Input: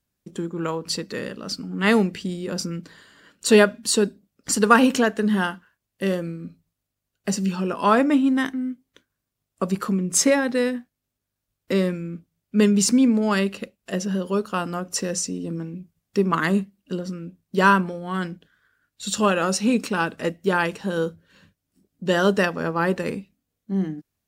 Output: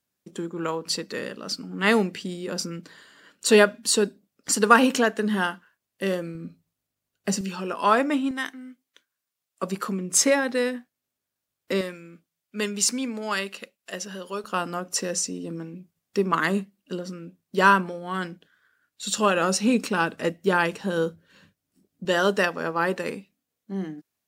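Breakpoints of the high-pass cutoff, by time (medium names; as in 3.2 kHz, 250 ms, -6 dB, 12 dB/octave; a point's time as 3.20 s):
high-pass 6 dB/octave
280 Hz
from 6.35 s 130 Hz
from 7.41 s 500 Hz
from 8.31 s 1.3 kHz
from 9.63 s 370 Hz
from 11.81 s 1.1 kHz
from 14.44 s 300 Hz
from 19.35 s 130 Hz
from 22.05 s 400 Hz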